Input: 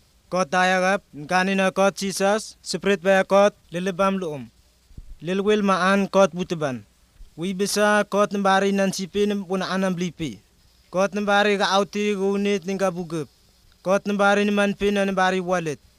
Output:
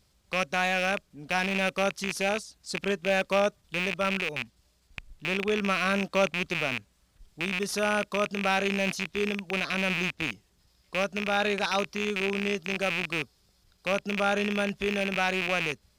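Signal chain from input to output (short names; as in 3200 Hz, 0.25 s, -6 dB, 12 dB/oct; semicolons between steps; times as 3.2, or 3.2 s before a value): rattling part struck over -34 dBFS, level -9 dBFS; gain -8.5 dB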